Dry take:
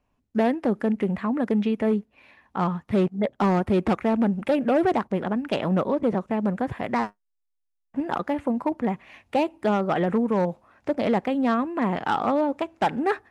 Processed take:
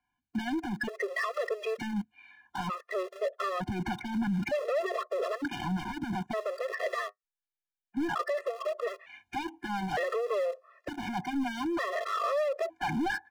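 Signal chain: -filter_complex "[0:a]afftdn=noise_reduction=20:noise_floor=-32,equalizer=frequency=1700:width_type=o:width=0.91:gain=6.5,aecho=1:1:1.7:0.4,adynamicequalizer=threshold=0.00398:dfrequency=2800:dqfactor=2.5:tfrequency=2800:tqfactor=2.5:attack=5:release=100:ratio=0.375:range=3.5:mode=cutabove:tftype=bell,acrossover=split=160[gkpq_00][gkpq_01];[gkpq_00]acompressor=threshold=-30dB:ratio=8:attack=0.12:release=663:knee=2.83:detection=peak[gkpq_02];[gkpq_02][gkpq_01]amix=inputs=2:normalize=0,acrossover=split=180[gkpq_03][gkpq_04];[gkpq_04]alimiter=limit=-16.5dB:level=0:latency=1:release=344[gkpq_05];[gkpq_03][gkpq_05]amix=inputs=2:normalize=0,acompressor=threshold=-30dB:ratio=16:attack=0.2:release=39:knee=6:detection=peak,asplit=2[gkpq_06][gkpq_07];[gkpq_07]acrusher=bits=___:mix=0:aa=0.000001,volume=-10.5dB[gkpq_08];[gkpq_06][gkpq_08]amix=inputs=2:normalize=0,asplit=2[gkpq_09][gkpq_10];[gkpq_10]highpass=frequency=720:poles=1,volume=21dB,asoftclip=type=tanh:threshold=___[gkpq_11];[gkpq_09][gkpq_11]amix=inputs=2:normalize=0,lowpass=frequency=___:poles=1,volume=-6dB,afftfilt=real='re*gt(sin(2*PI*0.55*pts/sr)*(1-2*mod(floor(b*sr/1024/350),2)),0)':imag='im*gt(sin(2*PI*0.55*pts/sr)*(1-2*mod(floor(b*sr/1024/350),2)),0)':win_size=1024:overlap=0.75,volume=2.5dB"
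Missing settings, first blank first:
6, -25dB, 4700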